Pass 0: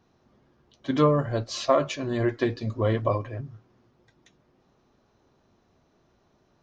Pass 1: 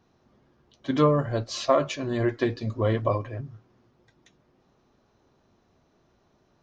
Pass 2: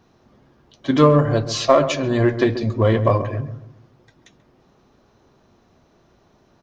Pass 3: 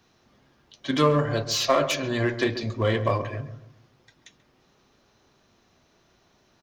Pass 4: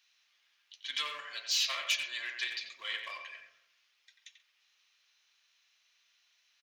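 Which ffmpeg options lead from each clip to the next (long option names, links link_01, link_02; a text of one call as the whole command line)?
ffmpeg -i in.wav -af anull out.wav
ffmpeg -i in.wav -filter_complex "[0:a]asplit=2[link_01][link_02];[link_02]asoftclip=type=hard:threshold=-23dB,volume=-11.5dB[link_03];[link_01][link_03]amix=inputs=2:normalize=0,asplit=2[link_04][link_05];[link_05]adelay=135,lowpass=frequency=1100:poles=1,volume=-10.5dB,asplit=2[link_06][link_07];[link_07]adelay=135,lowpass=frequency=1100:poles=1,volume=0.38,asplit=2[link_08][link_09];[link_09]adelay=135,lowpass=frequency=1100:poles=1,volume=0.38,asplit=2[link_10][link_11];[link_11]adelay=135,lowpass=frequency=1100:poles=1,volume=0.38[link_12];[link_04][link_06][link_08][link_10][link_12]amix=inputs=5:normalize=0,volume=6dB" out.wav
ffmpeg -i in.wav -filter_complex "[0:a]acrossover=split=360|1600[link_01][link_02][link_03];[link_02]asplit=2[link_04][link_05];[link_05]adelay=38,volume=-4.5dB[link_06];[link_04][link_06]amix=inputs=2:normalize=0[link_07];[link_03]aeval=exprs='0.224*sin(PI/2*2*val(0)/0.224)':channel_layout=same[link_08];[link_01][link_07][link_08]amix=inputs=3:normalize=0,volume=-8dB" out.wav
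ffmpeg -i in.wav -filter_complex "[0:a]highpass=frequency=2500:width_type=q:width=1.6,asplit=2[link_01][link_02];[link_02]adelay=90,highpass=300,lowpass=3400,asoftclip=type=hard:threshold=-22.5dB,volume=-6dB[link_03];[link_01][link_03]amix=inputs=2:normalize=0,volume=-5.5dB" out.wav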